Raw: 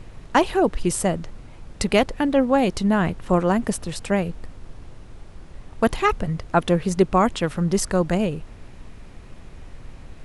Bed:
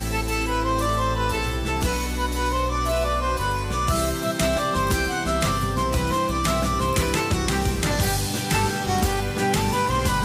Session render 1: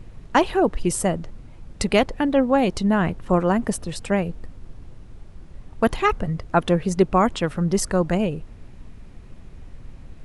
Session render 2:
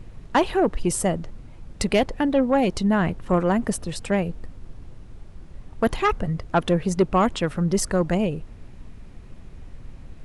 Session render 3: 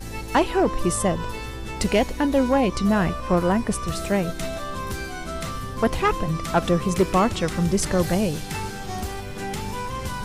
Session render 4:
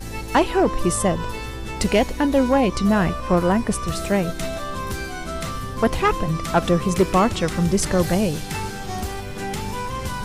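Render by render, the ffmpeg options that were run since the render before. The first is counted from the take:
-af "afftdn=nr=6:nf=-42"
-af "asoftclip=type=tanh:threshold=0.335"
-filter_complex "[1:a]volume=0.376[s0];[0:a][s0]amix=inputs=2:normalize=0"
-af "volume=1.26"

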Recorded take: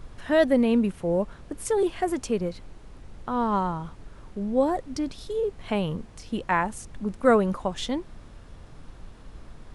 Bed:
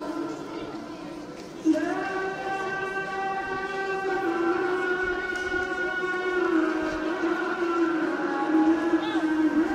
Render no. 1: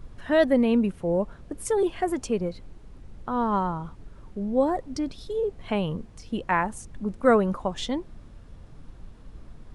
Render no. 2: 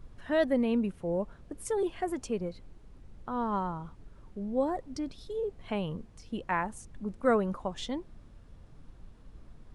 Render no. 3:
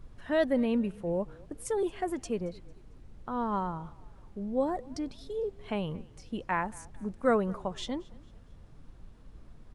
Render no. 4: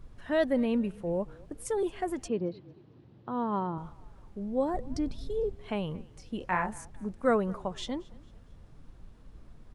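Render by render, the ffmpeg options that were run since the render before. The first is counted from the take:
-af "afftdn=nr=6:nf=-47"
-af "volume=0.473"
-filter_complex "[0:a]asplit=4[s0][s1][s2][s3];[s1]adelay=225,afreqshift=-32,volume=0.0708[s4];[s2]adelay=450,afreqshift=-64,volume=0.0282[s5];[s3]adelay=675,afreqshift=-96,volume=0.0114[s6];[s0][s4][s5][s6]amix=inputs=4:normalize=0"
-filter_complex "[0:a]asettb=1/sr,asplit=3[s0][s1][s2];[s0]atrim=end=2.284[s3];[s1]atrim=start=2.28:end=3.78,asetpts=PTS-STARTPTS,afade=t=in:d=0.004:c=qsin,afade=t=out:st=1.496:d=0.004:c=qsin,highpass=f=100:w=0.5412,highpass=f=100:w=1.3066,equalizer=f=130:t=q:w=4:g=8,equalizer=f=330:t=q:w=4:g=8,equalizer=f=1400:t=q:w=4:g=-4,equalizer=f=2200:t=q:w=4:g=-5,lowpass=f=4300:w=0.5412,lowpass=f=4300:w=1.3066[s4];[s2]atrim=start=3.776[s5];[s3][s4]acrossfade=d=0.004:c1=hsin:c2=qsin[s6];[s6][s5]acrossfade=d=0.004:c1=qsin:c2=hsin,asettb=1/sr,asplit=3[s7][s8][s9];[s7]atrim=end=4.744[s10];[s8]atrim=start=4.74:end=5.55,asetpts=PTS-STARTPTS,afade=t=in:d=0.004:c=qsin,afade=t=out:st=0.806:d=0.004:c=qsin,lowshelf=f=210:g=11.5[s11];[s9]atrim=start=5.546[s12];[s10][s11]acrossfade=d=0.004:c1=hsin:c2=qsin[s13];[s13][s12]acrossfade=d=0.004:c1=qsin:c2=hsin,asettb=1/sr,asplit=3[s14][s15][s16];[s14]atrim=end=6.384[s17];[s15]atrim=start=6.38:end=6.85,asetpts=PTS-STARTPTS,afade=t=in:d=0.004:c=qsin,afade=t=out:st=0.466:d=0.004:c=qsin,asplit=2[s18][s19];[s19]adelay=28,volume=0.562[s20];[s18][s20]amix=inputs=2:normalize=0,atrim=end_sample=20727[s21];[s16]atrim=start=6.846[s22];[s17][s21]acrossfade=d=0.004:c1=hsin:c2=qsin[s23];[s23][s22]acrossfade=d=0.004:c1=qsin:c2=hsin"

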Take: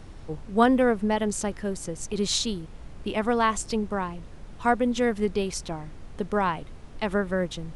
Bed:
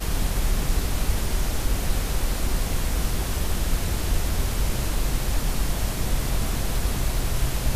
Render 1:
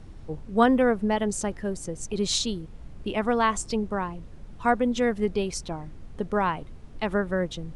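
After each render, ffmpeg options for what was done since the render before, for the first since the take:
-af "afftdn=nr=6:nf=-44"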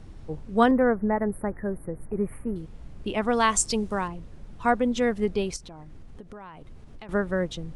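-filter_complex "[0:a]asettb=1/sr,asplit=3[s0][s1][s2];[s0]atrim=end=0.714[s3];[s1]atrim=start=0.71:end=2.56,asetpts=PTS-STARTPTS,afade=t=in:d=0.004:c=qsin,afade=t=out:st=1.846:d=0.004:c=qsin,asuperstop=centerf=4900:order=12:qfactor=0.58[s4];[s2]atrim=start=2.556[s5];[s3][s4]acrossfade=d=0.004:c1=hsin:c2=qsin[s6];[s6][s5]acrossfade=d=0.004:c1=qsin:c2=hsin,asettb=1/sr,asplit=3[s7][s8][s9];[s7]atrim=end=3.334[s10];[s8]atrim=start=3.33:end=4.08,asetpts=PTS-STARTPTS,afade=t=in:d=0.004:c=qsin,afade=t=out:st=0.746:d=0.004:c=qsin,highshelf=f=3800:g=11.5[s11];[s9]atrim=start=4.076[s12];[s10][s11]acrossfade=d=0.004:c1=hsin:c2=qsin[s13];[s13][s12]acrossfade=d=0.004:c1=qsin:c2=hsin,asettb=1/sr,asplit=3[s14][s15][s16];[s14]atrim=end=5.564[s17];[s15]atrim=start=5.56:end=7.09,asetpts=PTS-STARTPTS,afade=t=in:d=0.004:c=qsin,afade=t=out:st=1.526:d=0.004:c=qsin,acompressor=threshold=0.0112:ratio=10:attack=3.2:release=140:knee=1:detection=peak[s18];[s16]atrim=start=7.086[s19];[s17][s18]acrossfade=d=0.004:c1=hsin:c2=qsin[s20];[s20][s19]acrossfade=d=0.004:c1=qsin:c2=hsin"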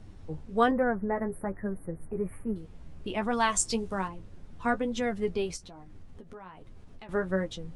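-af "flanger=delay=9.1:depth=3.9:regen=32:speed=1.2:shape=triangular"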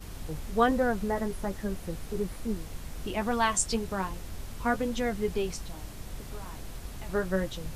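-filter_complex "[1:a]volume=0.15[s0];[0:a][s0]amix=inputs=2:normalize=0"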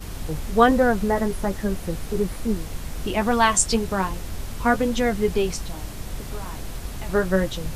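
-af "volume=2.51"

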